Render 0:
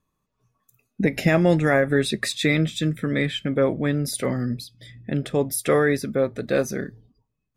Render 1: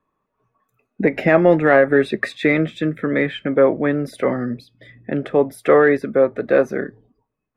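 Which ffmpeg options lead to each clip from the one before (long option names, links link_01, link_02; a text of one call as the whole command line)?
ffmpeg -i in.wav -filter_complex "[0:a]acrossover=split=270 2300:gain=0.224 1 0.0631[link_01][link_02][link_03];[link_01][link_02][link_03]amix=inputs=3:normalize=0,acontrast=25,volume=3dB" out.wav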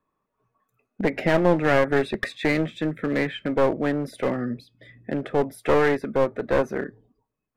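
ffmpeg -i in.wav -af "aeval=exprs='clip(val(0),-1,0.119)':channel_layout=same,volume=-4dB" out.wav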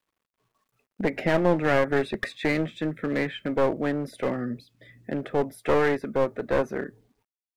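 ffmpeg -i in.wav -af "acrusher=bits=11:mix=0:aa=0.000001,volume=-2.5dB" out.wav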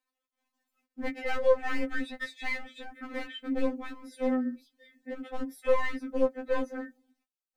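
ffmpeg -i in.wav -af "afftfilt=real='re*3.46*eq(mod(b,12),0)':imag='im*3.46*eq(mod(b,12),0)':win_size=2048:overlap=0.75,volume=-3.5dB" out.wav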